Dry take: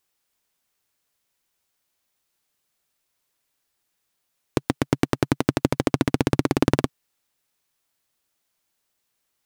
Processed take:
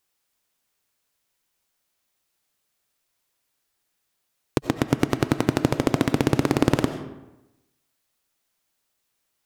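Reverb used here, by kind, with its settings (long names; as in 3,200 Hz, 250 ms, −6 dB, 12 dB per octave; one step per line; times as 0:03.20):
comb and all-pass reverb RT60 0.97 s, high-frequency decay 0.65×, pre-delay 50 ms, DRR 9 dB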